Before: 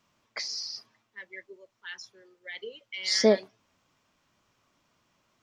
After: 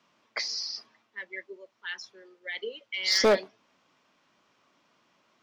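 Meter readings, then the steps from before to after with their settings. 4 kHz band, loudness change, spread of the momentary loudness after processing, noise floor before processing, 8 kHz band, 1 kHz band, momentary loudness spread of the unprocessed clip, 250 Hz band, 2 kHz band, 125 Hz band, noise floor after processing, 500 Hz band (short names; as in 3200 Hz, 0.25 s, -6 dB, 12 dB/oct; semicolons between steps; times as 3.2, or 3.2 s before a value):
+2.0 dB, -1.0 dB, 21 LU, -76 dBFS, 0.0 dB, +6.0 dB, 22 LU, -5.0 dB, +4.5 dB, n/a, -72 dBFS, 0.0 dB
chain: three-band isolator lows -19 dB, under 170 Hz, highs -14 dB, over 5900 Hz; overloaded stage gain 20.5 dB; gain +4.5 dB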